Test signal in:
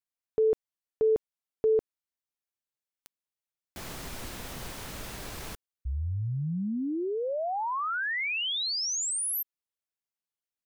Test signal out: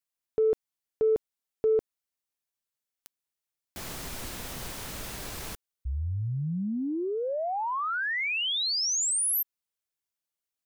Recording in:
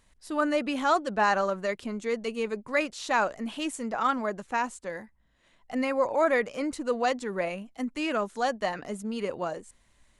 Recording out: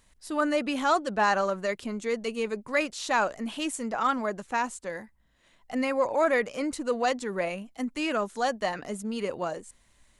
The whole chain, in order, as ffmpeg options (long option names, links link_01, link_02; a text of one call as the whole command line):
ffmpeg -i in.wav -filter_complex "[0:a]highshelf=frequency=4500:gain=4,asplit=2[link_01][link_02];[link_02]asoftclip=type=tanh:threshold=-22dB,volume=-11.5dB[link_03];[link_01][link_03]amix=inputs=2:normalize=0,volume=-1.5dB" out.wav